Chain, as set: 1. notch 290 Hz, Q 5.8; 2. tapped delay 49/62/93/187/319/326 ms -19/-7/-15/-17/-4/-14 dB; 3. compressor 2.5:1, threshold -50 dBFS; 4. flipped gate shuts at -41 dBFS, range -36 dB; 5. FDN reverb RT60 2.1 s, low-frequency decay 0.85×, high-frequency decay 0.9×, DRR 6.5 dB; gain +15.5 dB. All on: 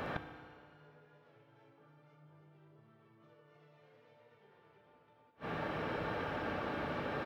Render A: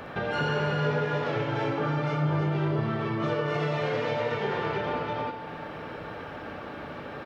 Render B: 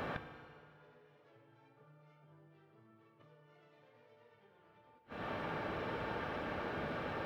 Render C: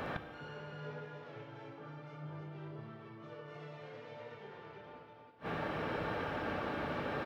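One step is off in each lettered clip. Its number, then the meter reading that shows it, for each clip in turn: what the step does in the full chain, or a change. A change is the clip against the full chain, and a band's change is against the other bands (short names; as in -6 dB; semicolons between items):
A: 4, momentary loudness spread change -4 LU; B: 2, momentary loudness spread change -1 LU; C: 3, mean gain reduction 10.0 dB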